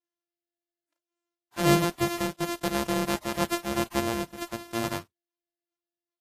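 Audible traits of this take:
a buzz of ramps at a fixed pitch in blocks of 128 samples
Ogg Vorbis

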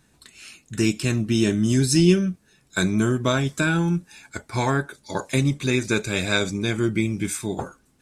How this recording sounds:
background noise floor −62 dBFS
spectral slope −5.0 dB per octave

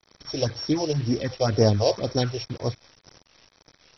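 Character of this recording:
a buzz of ramps at a fixed pitch in blocks of 8 samples
phaser sweep stages 4, 2 Hz, lowest notch 200–3,200 Hz
a quantiser's noise floor 8 bits, dither none
MP2

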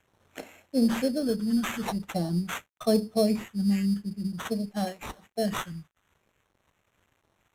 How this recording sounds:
a quantiser's noise floor 10 bits, dither none
phaser sweep stages 8, 0.47 Hz, lowest notch 590–4,100 Hz
aliases and images of a low sample rate 4,800 Hz, jitter 0%
Ogg Vorbis

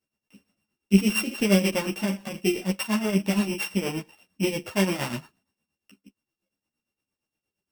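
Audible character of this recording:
a buzz of ramps at a fixed pitch in blocks of 16 samples
tremolo triangle 8.6 Hz, depth 80%
a shimmering, thickened sound

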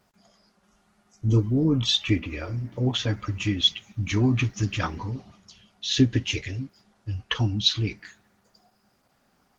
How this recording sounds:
a quantiser's noise floor 12 bits, dither none
Opus

